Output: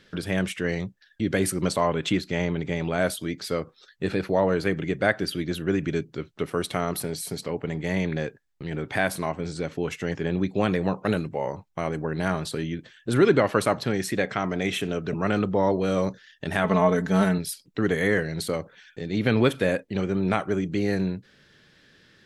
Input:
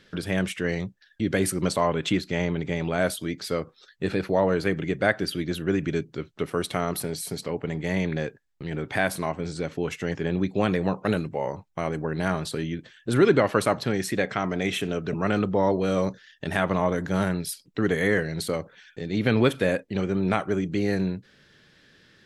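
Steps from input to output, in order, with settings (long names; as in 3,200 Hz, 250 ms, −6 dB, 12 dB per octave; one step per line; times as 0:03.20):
0:16.64–0:17.38: comb filter 4.6 ms, depth 90%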